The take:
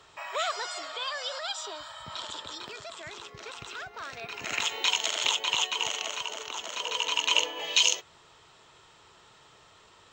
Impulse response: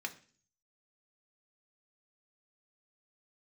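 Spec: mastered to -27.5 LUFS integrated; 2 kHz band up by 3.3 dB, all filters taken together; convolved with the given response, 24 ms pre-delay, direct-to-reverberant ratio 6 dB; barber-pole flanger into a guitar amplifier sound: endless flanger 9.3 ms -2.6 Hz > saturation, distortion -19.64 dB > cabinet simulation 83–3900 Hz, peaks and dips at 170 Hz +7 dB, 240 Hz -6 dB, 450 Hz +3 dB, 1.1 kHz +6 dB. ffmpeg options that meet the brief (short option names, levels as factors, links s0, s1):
-filter_complex "[0:a]equalizer=f=2000:t=o:g=4.5,asplit=2[s0][s1];[1:a]atrim=start_sample=2205,adelay=24[s2];[s1][s2]afir=irnorm=-1:irlink=0,volume=0.447[s3];[s0][s3]amix=inputs=2:normalize=0,asplit=2[s4][s5];[s5]adelay=9.3,afreqshift=-2.6[s6];[s4][s6]amix=inputs=2:normalize=1,asoftclip=threshold=0.178,highpass=83,equalizer=f=170:t=q:w=4:g=7,equalizer=f=240:t=q:w=4:g=-6,equalizer=f=450:t=q:w=4:g=3,equalizer=f=1100:t=q:w=4:g=6,lowpass=f=3900:w=0.5412,lowpass=f=3900:w=1.3066,volume=1.5"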